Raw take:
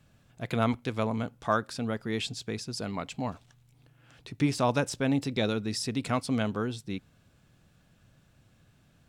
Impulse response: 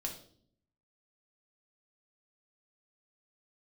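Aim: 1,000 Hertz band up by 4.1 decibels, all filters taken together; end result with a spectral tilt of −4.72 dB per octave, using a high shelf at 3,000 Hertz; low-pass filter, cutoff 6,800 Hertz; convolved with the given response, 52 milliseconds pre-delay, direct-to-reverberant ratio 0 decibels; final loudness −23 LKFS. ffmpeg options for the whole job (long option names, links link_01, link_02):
-filter_complex "[0:a]lowpass=6800,equalizer=frequency=1000:width_type=o:gain=4,highshelf=frequency=3000:gain=9,asplit=2[link_01][link_02];[1:a]atrim=start_sample=2205,adelay=52[link_03];[link_02][link_03]afir=irnorm=-1:irlink=0,volume=0dB[link_04];[link_01][link_04]amix=inputs=2:normalize=0,volume=2.5dB"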